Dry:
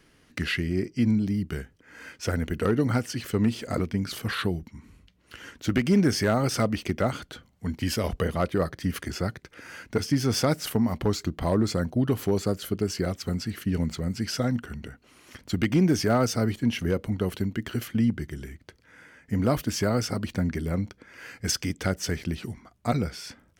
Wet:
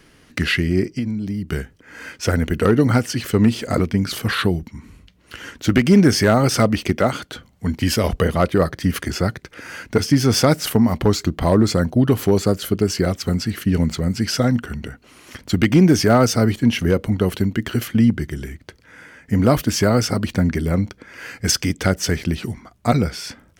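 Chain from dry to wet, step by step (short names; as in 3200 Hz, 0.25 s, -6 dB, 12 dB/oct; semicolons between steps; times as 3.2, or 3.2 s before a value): 0.89–1.48 compressor 6:1, threshold -30 dBFS, peak gain reduction 11 dB; 6.92–7.32 HPF 160 Hz 6 dB/oct; gain +8.5 dB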